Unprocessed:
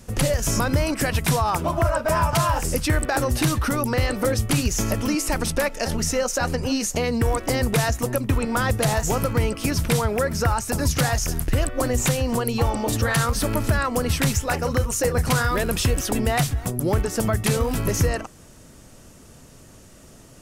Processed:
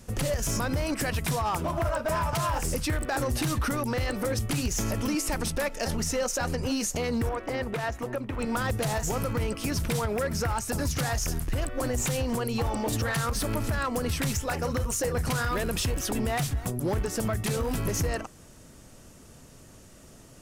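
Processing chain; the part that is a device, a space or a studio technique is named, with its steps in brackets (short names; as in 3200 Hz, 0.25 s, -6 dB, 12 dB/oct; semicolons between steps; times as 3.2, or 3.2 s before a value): limiter into clipper (limiter -15 dBFS, peak gain reduction 5 dB; hard clip -19 dBFS, distortion -19 dB); 7.29–8.39 tone controls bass -7 dB, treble -14 dB; gain -3.5 dB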